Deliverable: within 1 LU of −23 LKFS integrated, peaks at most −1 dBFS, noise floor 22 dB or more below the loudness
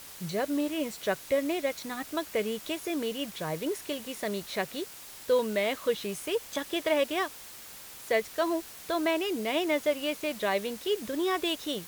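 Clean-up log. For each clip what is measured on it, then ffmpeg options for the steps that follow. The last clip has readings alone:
background noise floor −46 dBFS; target noise floor −53 dBFS; integrated loudness −31.0 LKFS; sample peak −14.0 dBFS; target loudness −23.0 LKFS
→ -af "afftdn=noise_reduction=7:noise_floor=-46"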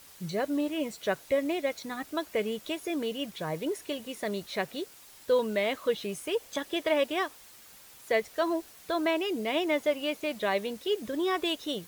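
background noise floor −53 dBFS; integrated loudness −31.0 LKFS; sample peak −14.5 dBFS; target loudness −23.0 LKFS
→ -af "volume=8dB"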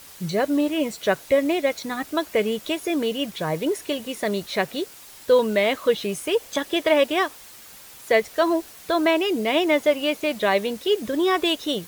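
integrated loudness −23.0 LKFS; sample peak −6.5 dBFS; background noise floor −45 dBFS

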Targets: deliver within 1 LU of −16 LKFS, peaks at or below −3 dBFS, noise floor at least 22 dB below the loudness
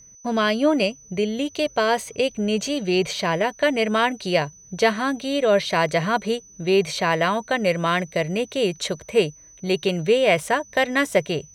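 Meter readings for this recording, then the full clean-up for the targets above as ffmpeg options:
interfering tone 6,000 Hz; level of the tone −46 dBFS; integrated loudness −22.0 LKFS; sample peak −5.0 dBFS; target loudness −16.0 LKFS
→ -af "bandreject=frequency=6000:width=30"
-af "volume=6dB,alimiter=limit=-3dB:level=0:latency=1"

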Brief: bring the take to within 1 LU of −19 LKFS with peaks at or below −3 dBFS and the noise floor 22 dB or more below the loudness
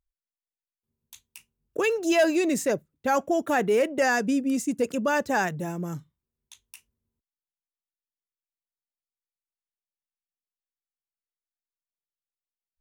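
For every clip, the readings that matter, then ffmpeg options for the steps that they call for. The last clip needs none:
integrated loudness −25.0 LKFS; sample peak −13.0 dBFS; target loudness −19.0 LKFS
→ -af "volume=6dB"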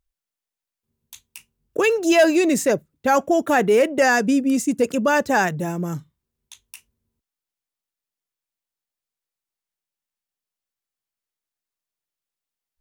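integrated loudness −19.0 LKFS; sample peak −7.0 dBFS; background noise floor −89 dBFS

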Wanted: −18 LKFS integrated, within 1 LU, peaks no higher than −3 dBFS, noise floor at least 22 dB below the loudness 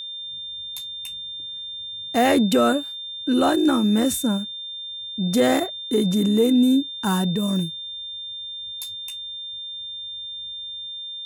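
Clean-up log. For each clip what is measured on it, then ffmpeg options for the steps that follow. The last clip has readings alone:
interfering tone 3,600 Hz; level of the tone −31 dBFS; integrated loudness −23.5 LKFS; sample peak −7.5 dBFS; target loudness −18.0 LKFS
→ -af "bandreject=frequency=3600:width=30"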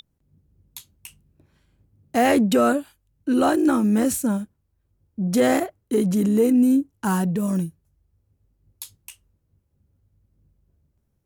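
interfering tone none found; integrated loudness −21.0 LKFS; sample peak −8.0 dBFS; target loudness −18.0 LKFS
→ -af "volume=3dB"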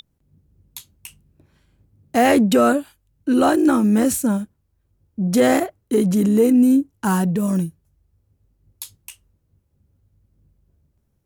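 integrated loudness −18.0 LKFS; sample peak −5.0 dBFS; background noise floor −68 dBFS

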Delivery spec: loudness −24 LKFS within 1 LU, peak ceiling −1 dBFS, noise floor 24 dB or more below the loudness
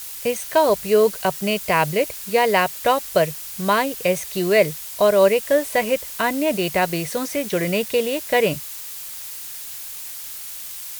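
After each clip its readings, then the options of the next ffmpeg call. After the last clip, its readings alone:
background noise floor −34 dBFS; target noise floor −45 dBFS; integrated loudness −21.0 LKFS; sample peak −3.0 dBFS; target loudness −24.0 LKFS
→ -af "afftdn=noise_reduction=11:noise_floor=-34"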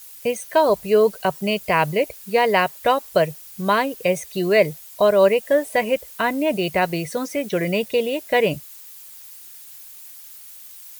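background noise floor −42 dBFS; target noise floor −45 dBFS
→ -af "afftdn=noise_reduction=6:noise_floor=-42"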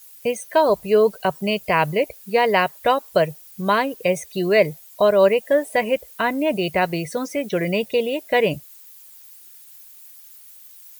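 background noise floor −46 dBFS; integrated loudness −20.5 LKFS; sample peak −3.5 dBFS; target loudness −24.0 LKFS
→ -af "volume=-3.5dB"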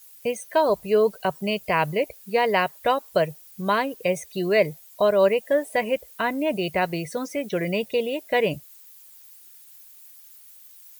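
integrated loudness −24.0 LKFS; sample peak −7.0 dBFS; background noise floor −49 dBFS

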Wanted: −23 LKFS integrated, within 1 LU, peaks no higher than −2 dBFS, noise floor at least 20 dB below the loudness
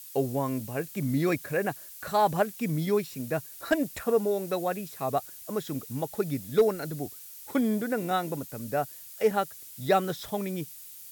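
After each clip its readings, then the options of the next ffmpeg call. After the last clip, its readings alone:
background noise floor −46 dBFS; target noise floor −50 dBFS; integrated loudness −29.5 LKFS; sample peak −13.0 dBFS; target loudness −23.0 LKFS
→ -af "afftdn=noise_reduction=6:noise_floor=-46"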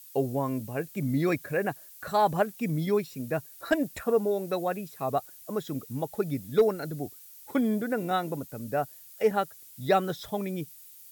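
background noise floor −50 dBFS; integrated loudness −29.5 LKFS; sample peak −13.0 dBFS; target loudness −23.0 LKFS
→ -af "volume=6.5dB"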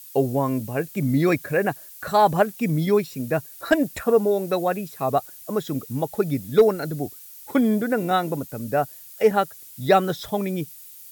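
integrated loudness −23.0 LKFS; sample peak −6.5 dBFS; background noise floor −44 dBFS

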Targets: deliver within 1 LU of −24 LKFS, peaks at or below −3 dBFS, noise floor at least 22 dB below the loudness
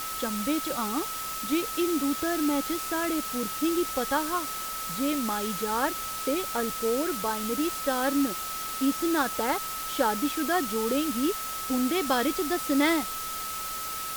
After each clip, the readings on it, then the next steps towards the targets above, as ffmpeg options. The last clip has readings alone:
interfering tone 1,300 Hz; level of the tone −35 dBFS; background noise floor −34 dBFS; target noise floor −50 dBFS; integrated loudness −28.0 LKFS; sample peak −11.0 dBFS; target loudness −24.0 LKFS
→ -af "bandreject=frequency=1300:width=30"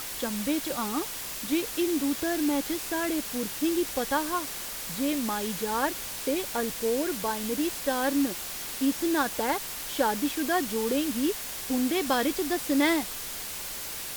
interfering tone none found; background noise floor −37 dBFS; target noise floor −51 dBFS
→ -af "afftdn=noise_reduction=14:noise_floor=-37"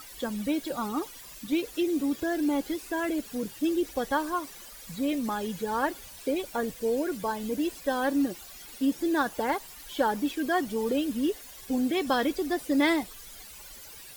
background noise floor −47 dBFS; target noise floor −52 dBFS
→ -af "afftdn=noise_reduction=6:noise_floor=-47"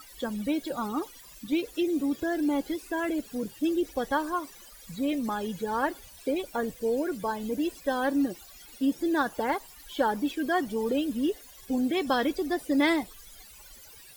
background noise floor −50 dBFS; target noise floor −52 dBFS
→ -af "afftdn=noise_reduction=6:noise_floor=-50"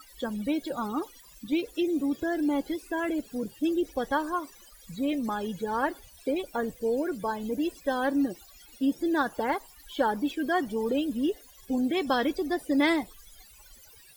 background noise floor −54 dBFS; integrated loudness −29.5 LKFS; sample peak −11.5 dBFS; target loudness −24.0 LKFS
→ -af "volume=5.5dB"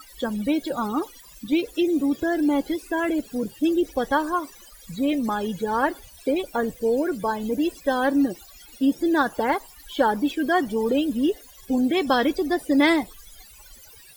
integrated loudness −24.0 LKFS; sample peak −6.0 dBFS; background noise floor −48 dBFS

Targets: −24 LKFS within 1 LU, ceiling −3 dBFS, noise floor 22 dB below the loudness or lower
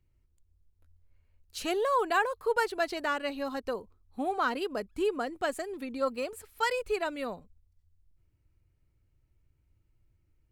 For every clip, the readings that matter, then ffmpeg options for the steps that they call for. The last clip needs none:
integrated loudness −31.5 LKFS; sample peak −14.0 dBFS; target loudness −24.0 LKFS
→ -af "volume=7.5dB"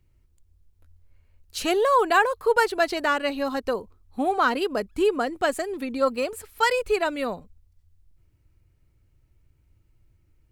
integrated loudness −24.0 LKFS; sample peak −6.5 dBFS; background noise floor −64 dBFS

